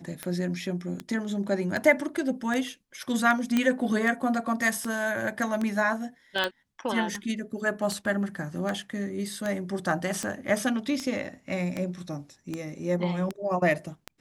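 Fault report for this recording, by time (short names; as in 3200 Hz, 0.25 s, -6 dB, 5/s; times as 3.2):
tick 78 rpm -17 dBFS
3.57 pop -11 dBFS
6.44 pop -12 dBFS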